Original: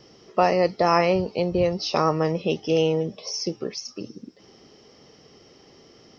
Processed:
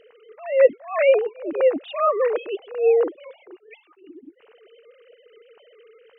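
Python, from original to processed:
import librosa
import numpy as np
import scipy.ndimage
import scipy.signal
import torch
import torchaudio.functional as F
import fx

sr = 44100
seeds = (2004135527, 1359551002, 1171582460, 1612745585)

y = fx.sine_speech(x, sr)
y = fx.attack_slew(y, sr, db_per_s=140.0)
y = y * librosa.db_to_amplitude(5.5)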